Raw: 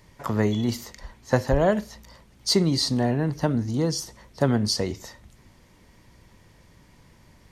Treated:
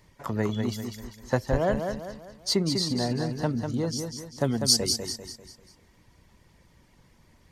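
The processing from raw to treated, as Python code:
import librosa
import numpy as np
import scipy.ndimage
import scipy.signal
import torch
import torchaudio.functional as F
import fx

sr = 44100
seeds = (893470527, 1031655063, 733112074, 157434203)

p1 = fx.dereverb_blind(x, sr, rt60_s=0.7)
p2 = fx.curve_eq(p1, sr, hz=(520.0, 1300.0, 7900.0), db=(0, -6, 14), at=(4.44, 4.98))
p3 = p2 + fx.echo_feedback(p2, sr, ms=197, feedback_pct=41, wet_db=-6.0, dry=0)
y = F.gain(torch.from_numpy(p3), -4.0).numpy()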